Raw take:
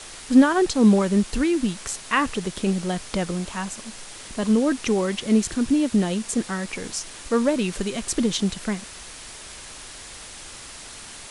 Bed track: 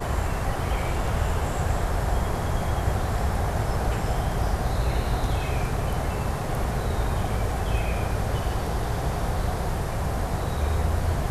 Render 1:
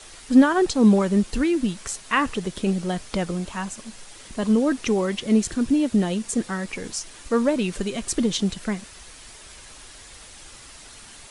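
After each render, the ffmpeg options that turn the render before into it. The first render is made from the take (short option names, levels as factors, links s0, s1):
-af "afftdn=nr=6:nf=-40"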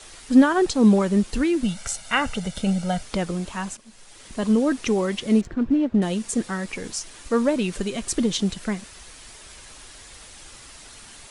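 -filter_complex "[0:a]asettb=1/sr,asplit=3[s0][s1][s2];[s0]atrim=end=1.634[s3];[s1]atrim=start=1.63:end=3.03,asetpts=PTS-STARTPTS,afade=t=in:d=0.004:c=qsin,afade=t=out:st=1.396:d=0.004:c=qsin,aecho=1:1:1.4:0.74,atrim=end_sample=61740[s4];[s2]atrim=start=3.026[s5];[s3][s4]acrossfade=d=0.004:c1=hsin:c2=qsin[s6];[s6][s5]acrossfade=d=0.004:c1=qsin:c2=hsin,asettb=1/sr,asplit=3[s7][s8][s9];[s7]atrim=end=5.414[s10];[s8]atrim=start=5.41:end=6.02,asetpts=PTS-STARTPTS,afade=t=in:d=0.004:c=qsin,afade=t=out:st=0.606:d=0.004:c=qsin,adynamicsmooth=sensitivity=1:basefreq=1400[s11];[s9]atrim=start=6.016[s12];[s10][s11]acrossfade=d=0.004:c1=hsin:c2=qsin[s13];[s13][s12]acrossfade=d=0.004:c1=qsin:c2=hsin,asplit=2[s14][s15];[s14]atrim=end=3.77,asetpts=PTS-STARTPTS,afade=t=out:st=3.766:d=0.004:c=hsin:silence=0.188365[s16];[s15]atrim=start=3.77,asetpts=PTS-STARTPTS,afade=t=in:d=0.62:silence=0.188365[s17];[s16][s17]concat=n=2:v=0:a=1"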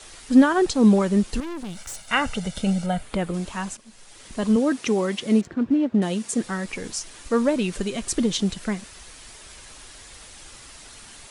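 -filter_complex "[0:a]asettb=1/sr,asplit=3[s0][s1][s2];[s0]atrim=end=1.404[s3];[s1]atrim=start=1.4:end=2.08,asetpts=PTS-STARTPTS,afade=t=in:d=0.004:c=qsin,afade=t=out:st=0.676:d=0.004:c=qsin,aeval=exprs='(tanh(35.5*val(0)+0.55)-tanh(0.55))/35.5':c=same[s4];[s2]atrim=start=2.076[s5];[s3][s4]acrossfade=d=0.004:c1=hsin:c2=qsin[s6];[s6][s5]acrossfade=d=0.004:c1=qsin:c2=hsin,asettb=1/sr,asplit=3[s7][s8][s9];[s7]atrim=end=2.864[s10];[s8]atrim=start=2.86:end=3.34,asetpts=PTS-STARTPTS,afade=t=in:d=0.004:c=qsin,afade=t=out:st=0.476:d=0.004:c=qsin,equalizer=f=5600:t=o:w=0.81:g=-12[s11];[s9]atrim=start=3.336[s12];[s10][s11]acrossfade=d=0.004:c1=hsin:c2=qsin[s13];[s13][s12]acrossfade=d=0.004:c1=qsin:c2=hsin,asettb=1/sr,asplit=3[s14][s15][s16];[s14]atrim=end=4.564[s17];[s15]atrim=start=4.56:end=6.44,asetpts=PTS-STARTPTS,afade=t=in:d=0.004:c=qsin,afade=t=out:st=1.876:d=0.004:c=qsin,highpass=120[s18];[s16]atrim=start=6.436[s19];[s17][s18]acrossfade=d=0.004:c1=hsin:c2=qsin[s20];[s20][s19]acrossfade=d=0.004:c1=qsin:c2=hsin"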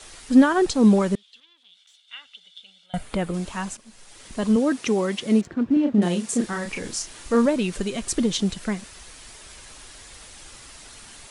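-filter_complex "[0:a]asettb=1/sr,asplit=3[s0][s1][s2];[s0]atrim=end=1.154[s3];[s1]atrim=start=1.15:end=2.94,asetpts=PTS-STARTPTS,afade=t=in:d=0.004:c=qsin,afade=t=out:st=1.786:d=0.004:c=qsin,bandpass=f=3400:t=q:w=10[s4];[s2]atrim=start=2.936[s5];[s3][s4]acrossfade=d=0.004:c1=hsin:c2=qsin[s6];[s6][s5]acrossfade=d=0.004:c1=qsin:c2=hsin,asettb=1/sr,asplit=3[s7][s8][s9];[s7]atrim=end=5.734[s10];[s8]atrim=start=5.73:end=7.46,asetpts=PTS-STARTPTS,afade=t=in:d=0.004:c=qsin,afade=t=out:st=1.726:d=0.004:c=qsin,asplit=2[s11][s12];[s12]adelay=34,volume=0.596[s13];[s11][s13]amix=inputs=2:normalize=0,atrim=end_sample=76293[s14];[s9]atrim=start=7.456[s15];[s10][s14]acrossfade=d=0.004:c1=hsin:c2=qsin[s16];[s16][s15]acrossfade=d=0.004:c1=qsin:c2=hsin"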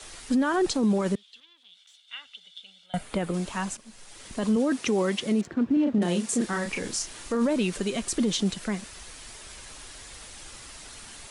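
-filter_complex "[0:a]acrossover=split=150[s0][s1];[s0]acompressor=threshold=0.00794:ratio=6[s2];[s1]alimiter=limit=0.133:level=0:latency=1:release=15[s3];[s2][s3]amix=inputs=2:normalize=0"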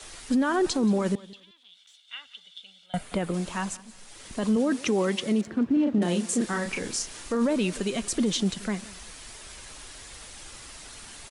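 -af "aecho=1:1:178|356:0.0944|0.0208"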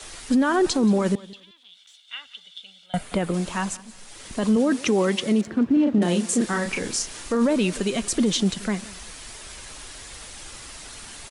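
-af "volume=1.58"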